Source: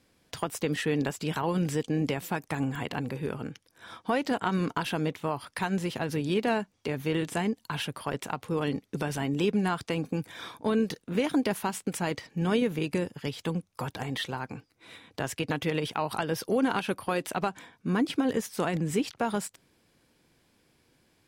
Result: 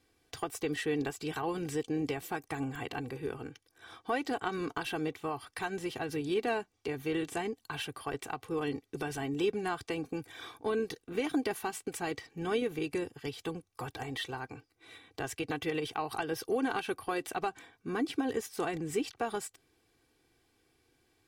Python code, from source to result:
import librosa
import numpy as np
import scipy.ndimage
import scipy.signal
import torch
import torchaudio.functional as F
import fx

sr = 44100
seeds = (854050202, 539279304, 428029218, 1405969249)

y = x + 0.66 * np.pad(x, (int(2.6 * sr / 1000.0), 0))[:len(x)]
y = y * librosa.db_to_amplitude(-6.0)